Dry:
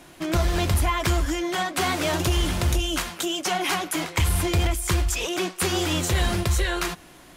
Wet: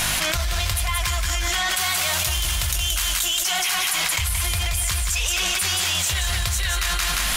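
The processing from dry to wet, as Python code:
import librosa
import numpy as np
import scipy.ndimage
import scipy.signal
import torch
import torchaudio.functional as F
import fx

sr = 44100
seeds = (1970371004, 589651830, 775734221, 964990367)

y = fx.tone_stack(x, sr, knobs='10-0-10')
y = fx.add_hum(y, sr, base_hz=50, snr_db=34)
y = fx.high_shelf(y, sr, hz=10000.0, db=8.5, at=(1.73, 3.91))
y = fx.echo_feedback(y, sr, ms=176, feedback_pct=24, wet_db=-5.0)
y = fx.env_flatten(y, sr, amount_pct=100)
y = y * librosa.db_to_amplitude(2.0)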